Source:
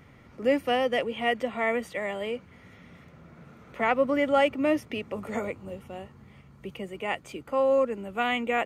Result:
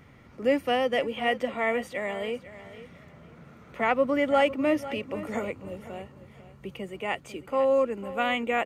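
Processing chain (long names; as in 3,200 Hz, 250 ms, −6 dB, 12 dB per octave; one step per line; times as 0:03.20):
repeating echo 499 ms, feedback 26%, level −15 dB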